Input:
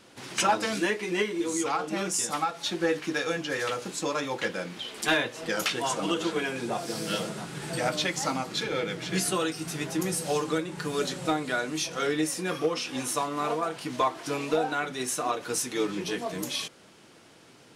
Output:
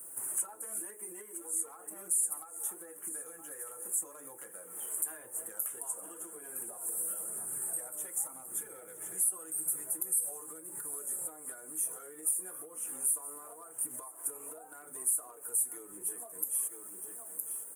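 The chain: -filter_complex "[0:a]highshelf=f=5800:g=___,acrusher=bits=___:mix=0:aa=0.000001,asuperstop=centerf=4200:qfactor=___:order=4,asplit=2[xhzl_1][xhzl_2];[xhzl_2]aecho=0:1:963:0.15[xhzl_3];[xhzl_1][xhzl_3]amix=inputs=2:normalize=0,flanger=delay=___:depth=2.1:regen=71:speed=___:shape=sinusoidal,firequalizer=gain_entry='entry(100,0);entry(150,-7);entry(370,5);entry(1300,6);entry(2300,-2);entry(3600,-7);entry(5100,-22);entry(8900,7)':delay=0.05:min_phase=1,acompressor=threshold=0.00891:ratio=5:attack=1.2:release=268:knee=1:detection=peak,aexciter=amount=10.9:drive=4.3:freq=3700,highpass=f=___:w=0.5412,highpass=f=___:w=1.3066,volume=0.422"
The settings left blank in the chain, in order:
6.5, 10, 0.83, 0.2, 0.94, 43, 43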